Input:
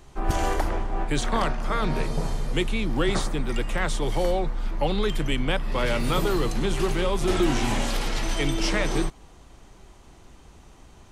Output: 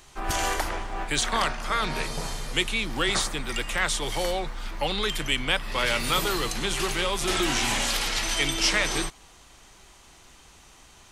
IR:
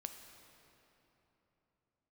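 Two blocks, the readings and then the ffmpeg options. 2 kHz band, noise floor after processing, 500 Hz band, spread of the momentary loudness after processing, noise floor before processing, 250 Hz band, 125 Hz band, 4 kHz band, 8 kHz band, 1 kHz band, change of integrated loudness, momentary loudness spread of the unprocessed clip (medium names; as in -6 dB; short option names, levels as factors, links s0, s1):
+4.5 dB, -53 dBFS, -4.5 dB, 7 LU, -50 dBFS, -6.0 dB, -7.0 dB, +6.5 dB, +7.0 dB, +0.5 dB, +0.5 dB, 5 LU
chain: -af "tiltshelf=f=940:g=-7.5"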